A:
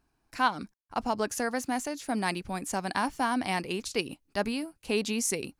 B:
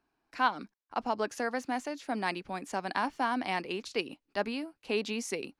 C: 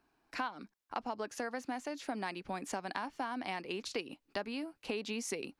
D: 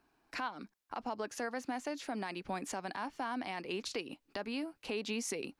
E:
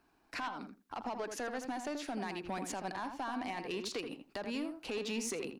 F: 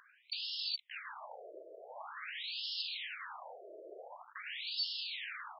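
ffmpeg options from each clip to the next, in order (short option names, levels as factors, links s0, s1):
-filter_complex "[0:a]acrossover=split=210 5000:gain=0.224 1 0.2[s0][s1][s2];[s0][s1][s2]amix=inputs=3:normalize=0,volume=0.841"
-af "acompressor=threshold=0.0112:ratio=6,volume=1.58"
-af "alimiter=level_in=1.68:limit=0.0631:level=0:latency=1:release=17,volume=0.596,volume=1.19"
-filter_complex "[0:a]asoftclip=type=tanh:threshold=0.0237,asplit=2[s0][s1];[s1]adelay=82,lowpass=f=1700:p=1,volume=0.501,asplit=2[s2][s3];[s3]adelay=82,lowpass=f=1700:p=1,volume=0.16,asplit=2[s4][s5];[s5]adelay=82,lowpass=f=1700:p=1,volume=0.16[s6];[s0][s2][s4][s6]amix=inputs=4:normalize=0,volume=1.19"
-af "aeval=exprs='val(0)+0.00708*sin(2*PI*4500*n/s)':c=same,aeval=exprs='(mod(126*val(0)+1,2)-1)/126':c=same,afftfilt=real='re*between(b*sr/1024,460*pow(3900/460,0.5+0.5*sin(2*PI*0.46*pts/sr))/1.41,460*pow(3900/460,0.5+0.5*sin(2*PI*0.46*pts/sr))*1.41)':imag='im*between(b*sr/1024,460*pow(3900/460,0.5+0.5*sin(2*PI*0.46*pts/sr))/1.41,460*pow(3900/460,0.5+0.5*sin(2*PI*0.46*pts/sr))*1.41)':win_size=1024:overlap=0.75,volume=5.31"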